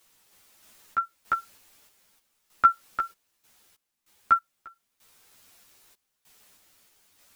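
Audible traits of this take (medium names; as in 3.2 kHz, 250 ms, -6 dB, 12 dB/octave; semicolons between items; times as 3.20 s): a quantiser's noise floor 10-bit, dither triangular; random-step tremolo 3.2 Hz, depth 95%; a shimmering, thickened sound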